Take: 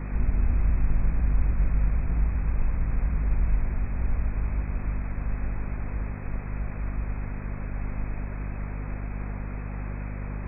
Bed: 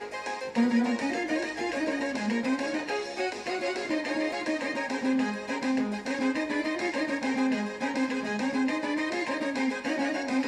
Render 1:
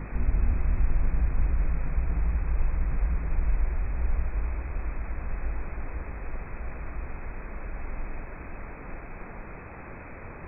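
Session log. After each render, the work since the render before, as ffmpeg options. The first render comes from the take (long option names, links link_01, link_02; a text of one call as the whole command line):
ffmpeg -i in.wav -af "bandreject=frequency=50:width_type=h:width=4,bandreject=frequency=100:width_type=h:width=4,bandreject=frequency=150:width_type=h:width=4,bandreject=frequency=200:width_type=h:width=4,bandreject=frequency=250:width_type=h:width=4" out.wav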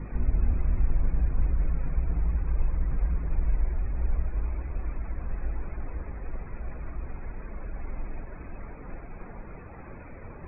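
ffmpeg -i in.wav -af "afftdn=noise_reduction=13:noise_floor=-42" out.wav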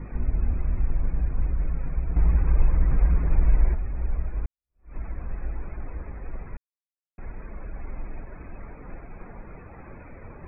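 ffmpeg -i in.wav -filter_complex "[0:a]asettb=1/sr,asplit=3[link_01][link_02][link_03];[link_01]atrim=end=2.164[link_04];[link_02]atrim=start=2.16:end=3.75,asetpts=PTS-STARTPTS,afade=type=in:duration=0.004:curve=qsin,afade=type=out:start_time=1.586:duration=0.004:curve=qsin,acontrast=74[link_05];[link_03]atrim=start=3.746[link_06];[link_04][link_05]acrossfade=duration=0.004:curve1=hsin:curve2=qsin[link_07];[link_07][link_06]acrossfade=duration=0.004:curve1=qsin:curve2=hsin,asplit=4[link_08][link_09][link_10][link_11];[link_08]atrim=end=4.46,asetpts=PTS-STARTPTS,afade=type=out:start_time=4.456:duration=0.004:curve=hsin[link_12];[link_09]atrim=start=4.46:end=6.57,asetpts=PTS-STARTPTS,afade=type=in:duration=0.5:curve=exp,afade=type=out:start_time=2.106:duration=0.004:curve=hsin[link_13];[link_10]atrim=start=6.57:end=7.18,asetpts=PTS-STARTPTS,volume=0[link_14];[link_11]atrim=start=7.18,asetpts=PTS-STARTPTS,afade=type=in:duration=0.004:curve=hsin[link_15];[link_12][link_13][link_14][link_15]concat=n=4:v=0:a=1" out.wav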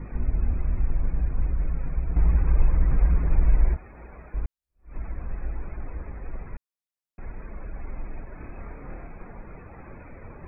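ffmpeg -i in.wav -filter_complex "[0:a]asettb=1/sr,asplit=3[link_01][link_02][link_03];[link_01]atrim=end=3.764[link_04];[link_02]atrim=start=3.76:end=4.34,asetpts=PTS-STARTPTS,afade=type=in:duration=0.004:curve=qsin,afade=type=out:start_time=0.576:duration=0.004:curve=qsin,highpass=frequency=410:poles=1[link_05];[link_03]atrim=start=4.336[link_06];[link_04][link_05]acrossfade=duration=0.004:curve1=hsin:curve2=qsin[link_07];[link_07][link_06]acrossfade=duration=0.004:curve1=qsin:curve2=hsin,asettb=1/sr,asplit=3[link_08][link_09][link_10];[link_08]atrim=end=8.344[link_11];[link_09]atrim=start=8.34:end=9.13,asetpts=PTS-STARTPTS,afade=type=in:duration=0.004:curve=qsin,afade=type=out:start_time=0.786:duration=0.004:curve=qsin,asplit=2[link_12][link_13];[link_13]adelay=29,volume=-3dB[link_14];[link_12][link_14]amix=inputs=2:normalize=0,atrim=end_sample=34839[link_15];[link_10]atrim=start=9.126[link_16];[link_11][link_15]acrossfade=duration=0.004:curve1=hsin:curve2=qsin[link_17];[link_17][link_16]acrossfade=duration=0.004:curve1=qsin:curve2=hsin" out.wav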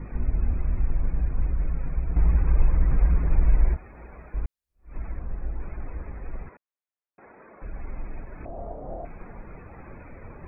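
ffmpeg -i in.wav -filter_complex "[0:a]asettb=1/sr,asplit=3[link_01][link_02][link_03];[link_01]atrim=end=5.194[link_04];[link_02]atrim=start=5.19:end=5.6,asetpts=PTS-STARTPTS,afade=type=in:duration=0.004:curve=qsin,afade=type=out:start_time=0.406:duration=0.004:curve=qsin,lowpass=frequency=1200:poles=1[link_05];[link_03]atrim=start=5.596[link_06];[link_04][link_05]acrossfade=duration=0.004:curve1=hsin:curve2=qsin[link_07];[link_07][link_06]acrossfade=duration=0.004:curve1=qsin:curve2=hsin,asettb=1/sr,asplit=3[link_08][link_09][link_10];[link_08]atrim=end=6.494[link_11];[link_09]atrim=start=6.49:end=7.62,asetpts=PTS-STARTPTS,afade=type=in:duration=0.004:curve=qsin,afade=type=out:start_time=1.126:duration=0.004:curve=qsin,highpass=360,lowpass=2000[link_12];[link_10]atrim=start=7.616[link_13];[link_11][link_12]acrossfade=duration=0.004:curve1=hsin:curve2=qsin[link_14];[link_14][link_13]acrossfade=duration=0.004:curve1=qsin:curve2=hsin,asettb=1/sr,asplit=3[link_15][link_16][link_17];[link_15]atrim=end=8.454[link_18];[link_16]atrim=start=8.45:end=9.05,asetpts=PTS-STARTPTS,afade=type=in:duration=0.004:curve=qsin,afade=type=out:start_time=0.596:duration=0.004:curve=qsin,lowpass=frequency=670:width_type=q:width=6.4[link_19];[link_17]atrim=start=9.046[link_20];[link_18][link_19]acrossfade=duration=0.004:curve1=hsin:curve2=qsin[link_21];[link_21][link_20]acrossfade=duration=0.004:curve1=qsin:curve2=hsin" out.wav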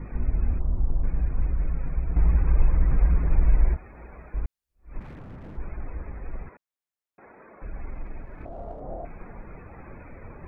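ffmpeg -i in.wav -filter_complex "[0:a]asplit=3[link_01][link_02][link_03];[link_01]afade=type=out:start_time=0.58:duration=0.02[link_04];[link_02]lowpass=frequency=1100:width=0.5412,lowpass=frequency=1100:width=1.3066,afade=type=in:start_time=0.58:duration=0.02,afade=type=out:start_time=1.02:duration=0.02[link_05];[link_03]afade=type=in:start_time=1.02:duration=0.02[link_06];[link_04][link_05][link_06]amix=inputs=3:normalize=0,asplit=3[link_07][link_08][link_09];[link_07]afade=type=out:start_time=4.99:duration=0.02[link_10];[link_08]aeval=exprs='0.0158*(abs(mod(val(0)/0.0158+3,4)-2)-1)':channel_layout=same,afade=type=in:start_time=4.99:duration=0.02,afade=type=out:start_time=5.56:duration=0.02[link_11];[link_09]afade=type=in:start_time=5.56:duration=0.02[link_12];[link_10][link_11][link_12]amix=inputs=3:normalize=0,asettb=1/sr,asplit=3[link_13][link_14][link_15];[link_13]atrim=end=7.904[link_16];[link_14]atrim=start=7.9:end=8.8,asetpts=PTS-STARTPTS,afade=type=in:duration=0.004:curve=qsin,afade=type=out:start_time=0.896:duration=0.004:curve=qsin,aeval=exprs='if(lt(val(0),0),0.708*val(0),val(0))':channel_layout=same[link_17];[link_15]atrim=start=8.796[link_18];[link_16][link_17]acrossfade=duration=0.004:curve1=hsin:curve2=qsin[link_19];[link_19][link_18]acrossfade=duration=0.004:curve1=qsin:curve2=hsin" out.wav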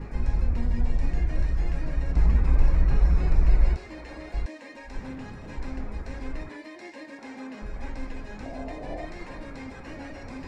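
ffmpeg -i in.wav -i bed.wav -filter_complex "[1:a]volume=-13dB[link_01];[0:a][link_01]amix=inputs=2:normalize=0" out.wav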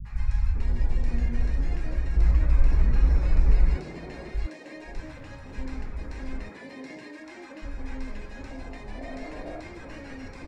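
ffmpeg -i in.wav -filter_complex "[0:a]acrossover=split=160|840[link_01][link_02][link_03];[link_03]adelay=50[link_04];[link_02]adelay=550[link_05];[link_01][link_05][link_04]amix=inputs=3:normalize=0" out.wav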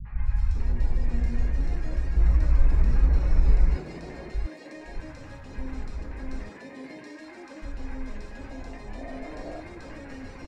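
ffmpeg -i in.wav -filter_complex "[0:a]acrossover=split=2700[link_01][link_02];[link_02]adelay=200[link_03];[link_01][link_03]amix=inputs=2:normalize=0" out.wav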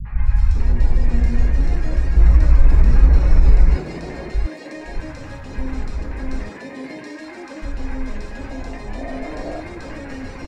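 ffmpeg -i in.wav -af "volume=9dB,alimiter=limit=-2dB:level=0:latency=1" out.wav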